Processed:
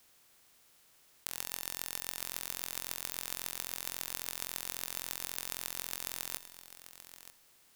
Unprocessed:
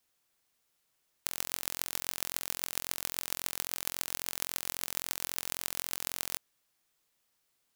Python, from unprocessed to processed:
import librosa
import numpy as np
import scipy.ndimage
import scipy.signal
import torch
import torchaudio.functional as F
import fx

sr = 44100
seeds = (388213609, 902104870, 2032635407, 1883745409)

y = fx.bin_compress(x, sr, power=0.6)
y = fx.comb_fb(y, sr, f0_hz=64.0, decay_s=1.6, harmonics='all', damping=0.0, mix_pct=50)
y = y + 10.0 ** (-13.5 / 20.0) * np.pad(y, (int(930 * sr / 1000.0), 0))[:len(y)]